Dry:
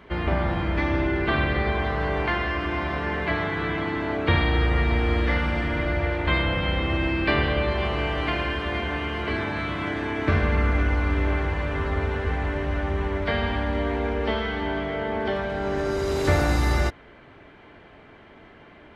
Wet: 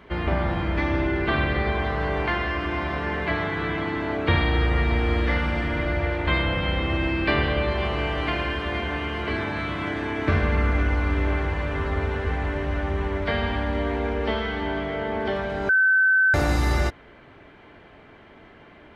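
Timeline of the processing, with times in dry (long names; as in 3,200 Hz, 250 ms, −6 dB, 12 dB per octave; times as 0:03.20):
0:15.69–0:16.34: beep over 1,530 Hz −15 dBFS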